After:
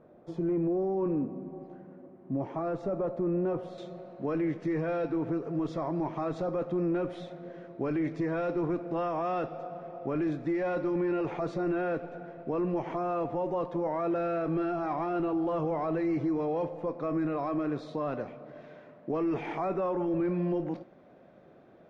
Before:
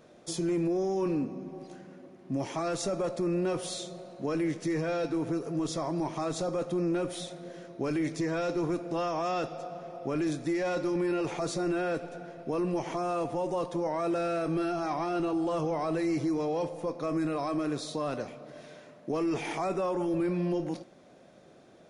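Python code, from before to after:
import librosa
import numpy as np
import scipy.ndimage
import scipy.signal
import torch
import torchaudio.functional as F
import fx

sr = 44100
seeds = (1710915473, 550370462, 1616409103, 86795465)

y = fx.lowpass(x, sr, hz=fx.steps((0.0, 1100.0), (3.78, 2000.0)), slope=12)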